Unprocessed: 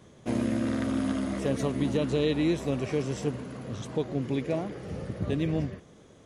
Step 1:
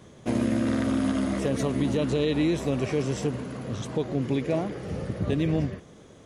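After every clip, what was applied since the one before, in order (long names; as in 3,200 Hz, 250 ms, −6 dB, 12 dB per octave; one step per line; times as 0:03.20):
brickwall limiter −20 dBFS, peak gain reduction 4.5 dB
level +4 dB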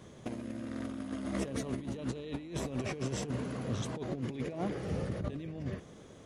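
compressor whose output falls as the input rises −29 dBFS, ratio −0.5
level −6.5 dB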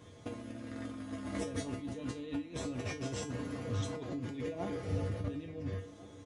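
tuned comb filter 96 Hz, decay 0.25 s, harmonics odd, mix 90%
downsampling to 22,050 Hz
slap from a distant wall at 240 metres, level −18 dB
level +9 dB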